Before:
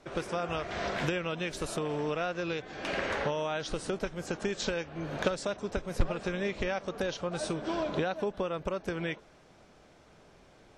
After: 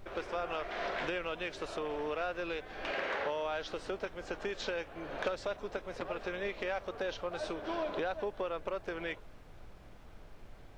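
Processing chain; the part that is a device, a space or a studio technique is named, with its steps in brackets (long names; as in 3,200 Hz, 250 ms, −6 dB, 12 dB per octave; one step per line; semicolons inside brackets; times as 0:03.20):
aircraft cabin announcement (band-pass filter 370–3,900 Hz; soft clipping −21.5 dBFS, distortion −22 dB; brown noise bed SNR 13 dB)
0:02.91–0:03.44: high-pass filter 130 Hz 6 dB per octave
level −1.5 dB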